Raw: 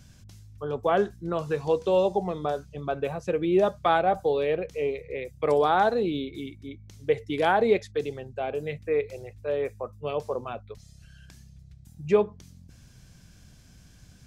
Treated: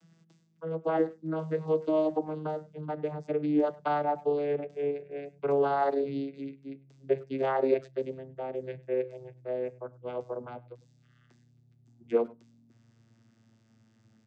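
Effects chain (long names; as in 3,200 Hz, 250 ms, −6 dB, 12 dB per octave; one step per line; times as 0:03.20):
vocoder with a gliding carrier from E3, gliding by −7 semitones
high-pass filter 240 Hz 12 dB per octave
far-end echo of a speakerphone 100 ms, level −22 dB
level −2 dB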